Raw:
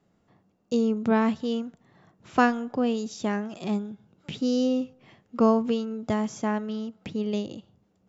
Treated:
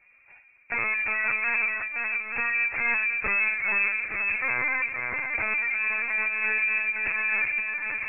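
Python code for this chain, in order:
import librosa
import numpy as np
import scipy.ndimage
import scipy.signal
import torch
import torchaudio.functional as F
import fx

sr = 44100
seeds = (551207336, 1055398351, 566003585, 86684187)

y = fx.envelope_sharpen(x, sr, power=3.0, at=(3.16, 4.34))
y = fx.env_lowpass_down(y, sr, base_hz=310.0, full_db=-18.0)
y = fx.hum_notches(y, sr, base_hz=50, count=9, at=(1.15, 1.56))
y = fx.over_compress(y, sr, threshold_db=-31.0, ratio=-1.0, at=(5.54, 6.19))
y = fx.cheby_harmonics(y, sr, harmonics=(3, 4, 5, 8), levels_db=(-15, -28, -7, -30), full_scale_db=-9.5)
y = 10.0 ** (-23.0 / 20.0) * (np.abs((y / 10.0 ** (-23.0 / 20.0) + 3.0) % 4.0 - 2.0) - 1.0)
y = fx.echo_swing(y, sr, ms=871, ratio=1.5, feedback_pct=48, wet_db=-5)
y = fx.rev_fdn(y, sr, rt60_s=2.4, lf_ratio=1.3, hf_ratio=0.75, size_ms=21.0, drr_db=10.5)
y = fx.freq_invert(y, sr, carrier_hz=2600)
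y = fx.lpc_vocoder(y, sr, seeds[0], excitation='pitch_kept', order=16)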